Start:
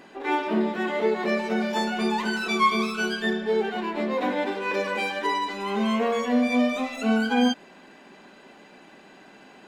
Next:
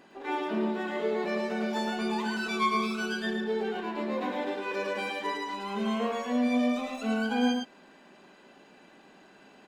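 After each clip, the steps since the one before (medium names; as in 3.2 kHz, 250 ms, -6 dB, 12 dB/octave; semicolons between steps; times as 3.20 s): peaking EQ 2.1 kHz -3 dB 0.25 oct; on a send: delay 110 ms -3.5 dB; on the sum: trim -7 dB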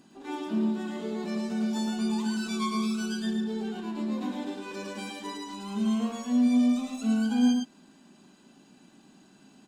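graphic EQ 125/250/500/1000/2000/8000 Hz +5/+6/-11/-3/-10/+8 dB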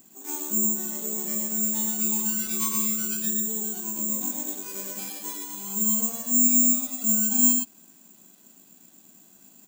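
careless resampling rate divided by 6×, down none, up zero stuff; trim -5 dB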